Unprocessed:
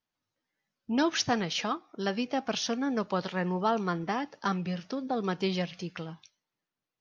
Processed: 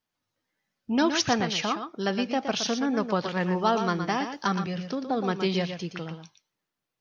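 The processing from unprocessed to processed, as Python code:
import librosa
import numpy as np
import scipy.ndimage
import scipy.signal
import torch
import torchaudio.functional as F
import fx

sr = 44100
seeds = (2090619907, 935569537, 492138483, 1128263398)

y = fx.high_shelf(x, sr, hz=3900.0, db=9.0, at=(3.4, 4.47))
y = y + 10.0 ** (-8.0 / 20.0) * np.pad(y, (int(118 * sr / 1000.0), 0))[:len(y)]
y = y * 10.0 ** (3.0 / 20.0)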